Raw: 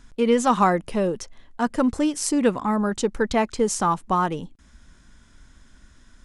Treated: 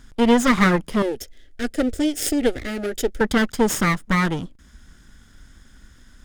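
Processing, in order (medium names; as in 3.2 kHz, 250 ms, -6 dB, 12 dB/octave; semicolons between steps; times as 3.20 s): comb filter that takes the minimum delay 0.58 ms; 1.02–3.21 s: static phaser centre 430 Hz, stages 4; trim +4 dB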